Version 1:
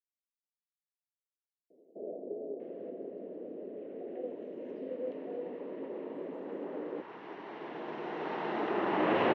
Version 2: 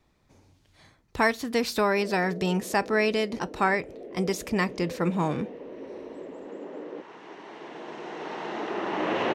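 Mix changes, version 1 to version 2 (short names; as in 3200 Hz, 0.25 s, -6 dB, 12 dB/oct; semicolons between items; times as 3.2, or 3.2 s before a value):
speech: unmuted; master: remove air absorption 260 m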